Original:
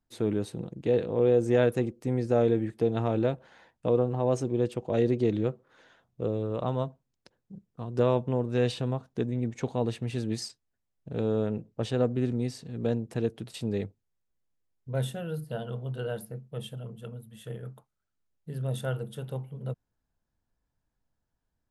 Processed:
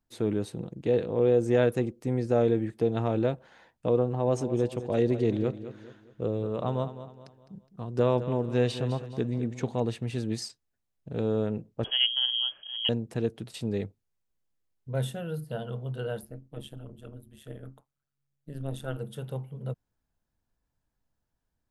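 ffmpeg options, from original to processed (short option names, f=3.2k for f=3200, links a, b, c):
-filter_complex "[0:a]asettb=1/sr,asplit=3[a][b][c];[a]atrim=end=4.074[d];[b]atrim=start=4.07:end=9.8,asetpts=PTS-STARTPTS,afade=t=in:d=0.004:c=qsin,afade=t=out:st=5.726:d=0.004:c=qsin,aecho=1:1:208|416|624|832:0.237|0.0925|0.0361|0.0141,atrim=end_sample=252693[e];[c]atrim=start=9.796[f];[d][e]acrossfade=d=0.004:c1=hsin:c2=qsin[g];[g][f]acrossfade=d=0.004:c1=qsin:c2=hsin,asettb=1/sr,asplit=3[h][i][j];[h]atrim=end=11.844[k];[i]atrim=start=11.84:end=12.89,asetpts=PTS-STARTPTS,afade=t=in:d=0.004:c=qsin,afade=t=out:st=1.046:d=0.004:c=qsin,lowpass=f=2.9k:t=q:w=0.5098,lowpass=f=2.9k:t=q:w=0.6013,lowpass=f=2.9k:t=q:w=0.9,lowpass=f=2.9k:t=q:w=2.563,afreqshift=-3400[l];[j]atrim=start=12.886[m];[k][l]acrossfade=d=0.004:c1=hsin:c2=qsin[n];[n][m]acrossfade=d=0.004:c1=qsin:c2=hsin,asplit=3[o][p][q];[o]afade=t=out:st=16.2:d=0.02[r];[p]tremolo=f=140:d=0.889,afade=t=in:st=16.2:d=0.02,afade=t=out:st=18.97:d=0.02[s];[q]afade=t=in:st=18.97:d=0.02[t];[r][s][t]amix=inputs=3:normalize=0"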